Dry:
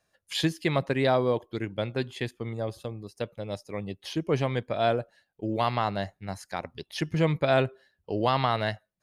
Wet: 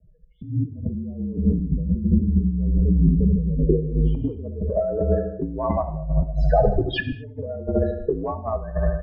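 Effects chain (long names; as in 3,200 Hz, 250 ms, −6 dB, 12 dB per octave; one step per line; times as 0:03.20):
mains-hum notches 60/120/180/240/300 Hz
spectral peaks only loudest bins 8
frequency shifter −46 Hz
spectral tilt −4 dB per octave
repeating echo 77 ms, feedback 53%, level −11 dB
compressor whose output falls as the input rises −33 dBFS, ratio −1
comb filter 4.6 ms, depth 42%
reverb whose tail is shaped and stops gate 260 ms falling, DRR 10 dB
low-pass filter sweep 200 Hz → 3,600 Hz, 0:03.46–0:04.77
0:02.53–0:03.29: background raised ahead of every attack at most 30 dB per second
level +7.5 dB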